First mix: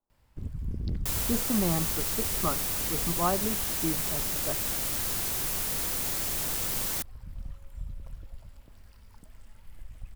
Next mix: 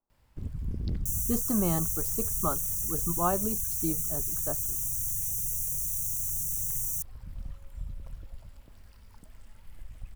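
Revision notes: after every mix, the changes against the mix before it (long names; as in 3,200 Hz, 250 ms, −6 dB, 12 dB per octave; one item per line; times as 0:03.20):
second sound: add linear-phase brick-wall band-stop 170–5,600 Hz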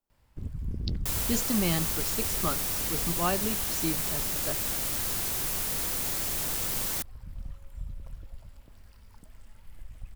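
speech: add high shelf with overshoot 1,600 Hz +11.5 dB, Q 1.5
second sound: remove linear-phase brick-wall band-stop 170–5,600 Hz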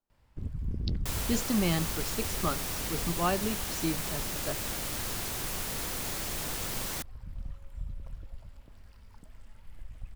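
master: add high-shelf EQ 7,300 Hz −8 dB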